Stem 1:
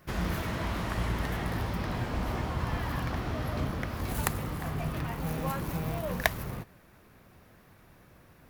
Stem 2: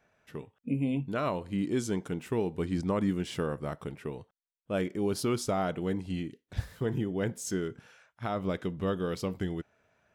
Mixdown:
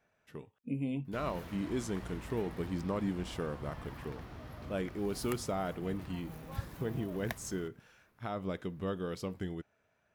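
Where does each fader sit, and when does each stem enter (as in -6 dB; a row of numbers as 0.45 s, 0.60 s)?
-14.5 dB, -5.5 dB; 1.05 s, 0.00 s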